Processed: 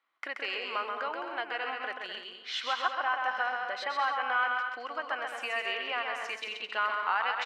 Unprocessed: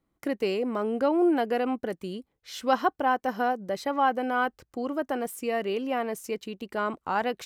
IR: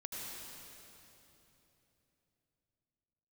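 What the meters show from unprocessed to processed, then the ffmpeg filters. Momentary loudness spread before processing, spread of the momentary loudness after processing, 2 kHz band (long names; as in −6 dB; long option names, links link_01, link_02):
11 LU, 8 LU, +4.0 dB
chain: -filter_complex "[0:a]acompressor=threshold=-29dB:ratio=6,asuperpass=centerf=2000:order=4:qfactor=0.79,aecho=1:1:130|214.5|269.4|305.1|328.3:0.631|0.398|0.251|0.158|0.1,asplit=2[link_01][link_02];[1:a]atrim=start_sample=2205[link_03];[link_02][link_03]afir=irnorm=-1:irlink=0,volume=-18.5dB[link_04];[link_01][link_04]amix=inputs=2:normalize=0,volume=8dB"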